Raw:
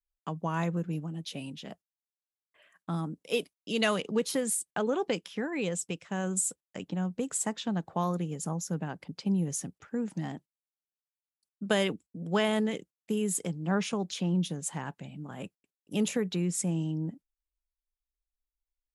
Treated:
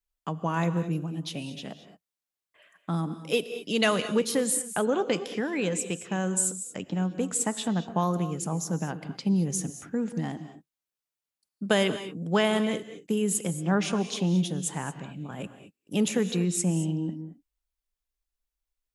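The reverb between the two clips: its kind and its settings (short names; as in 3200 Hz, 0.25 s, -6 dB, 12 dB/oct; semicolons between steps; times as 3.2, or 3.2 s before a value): non-linear reverb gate 0.25 s rising, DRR 11 dB; gain +3.5 dB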